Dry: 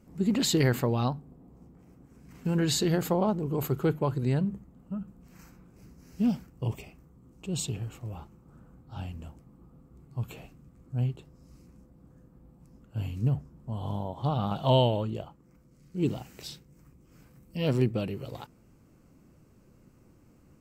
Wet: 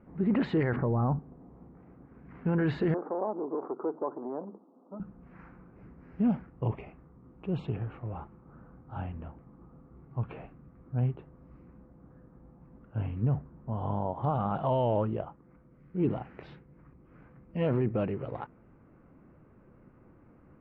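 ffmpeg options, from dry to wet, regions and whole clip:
ffmpeg -i in.wav -filter_complex "[0:a]asettb=1/sr,asplit=3[link_01][link_02][link_03];[link_01]atrim=end=0.764[link_04];[link_02]atrim=start=0.76:end=1.19,asetpts=PTS-STARTPTS,afade=type=in:duration=0.004:curve=qsin,afade=type=out:start_time=0.426:duration=0.004:curve=qsin,lowpass=frequency=1500:width=0.5412,lowpass=frequency=1500:width=1.3066,lowshelf=frequency=300:gain=8.5[link_05];[link_03]atrim=start=1.186[link_06];[link_04][link_05]acrossfade=duration=0.004:curve1=hsin:curve2=qsin[link_07];[link_07][link_06]acrossfade=duration=0.004:curve1=qsin:curve2=hsin,asettb=1/sr,asplit=3[link_08][link_09][link_10];[link_08]atrim=end=2.944[link_11];[link_09]atrim=start=2.94:end=5,asetpts=PTS-STARTPTS,afade=type=in:duration=0.004:curve=qsin,afade=type=out:start_time=2.056:duration=0.004:curve=qsin,acompressor=threshold=-27dB:ratio=5:attack=3.2:release=140:knee=1:detection=peak,asoftclip=type=hard:threshold=-27.5dB,asuperpass=centerf=540:order=8:qfactor=0.63[link_12];[link_10]atrim=start=4.996[link_13];[link_11][link_12]acrossfade=duration=0.004:curve1=hsin:curve2=qsin[link_14];[link_14][link_13]acrossfade=duration=0.004:curve1=qsin:curve2=hsin,lowpass=frequency=1900:width=0.5412,lowpass=frequency=1900:width=1.3066,lowshelf=frequency=350:gain=-6.5,alimiter=level_in=1.5dB:limit=-24dB:level=0:latency=1:release=12,volume=-1.5dB,volume=6dB" out.wav

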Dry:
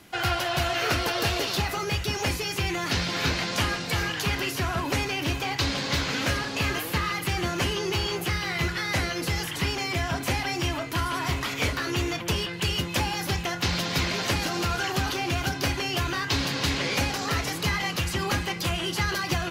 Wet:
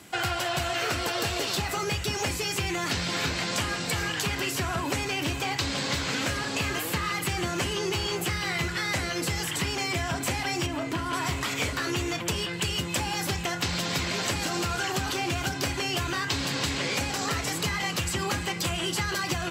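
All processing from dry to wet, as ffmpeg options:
ffmpeg -i in.wav -filter_complex "[0:a]asettb=1/sr,asplit=3[link_01][link_02][link_03];[link_01]atrim=end=10.664[link_04];[link_02]atrim=start=10.66:end=11.13,asetpts=PTS-STARTPTS,afade=type=in:duration=0.004:curve=qsin,afade=type=out:start_time=0.466:duration=0.004:curve=qsin,equalizer=frequency=290:width=0.67:gain=6,acrossover=split=3300|6800[link_05][link_06][link_07];[link_05]acompressor=threshold=-28dB:ratio=4[link_08];[link_06]acompressor=threshold=-49dB:ratio=4[link_09];[link_07]acompressor=threshold=-58dB:ratio=4[link_10];[link_08][link_09][link_10]amix=inputs=3:normalize=0,asplit=2[link_11][link_12];[link_12]adelay=33,volume=-11.5dB[link_13];[link_11][link_13]amix=inputs=2:normalize=0,atrim=end_sample=20727[link_14];[link_03]atrim=start=11.126[link_15];[link_04][link_14]acrossfade=duration=0.004:curve1=hsin:curve2=qsin[link_16];[link_16][link_15]acrossfade=duration=0.004:curve1=qsin:curve2=hsin,highpass=63,equalizer=frequency=7800:width_type=o:width=0.24:gain=10.5,acompressor=threshold=-27dB:ratio=6,volume=2dB" out.wav

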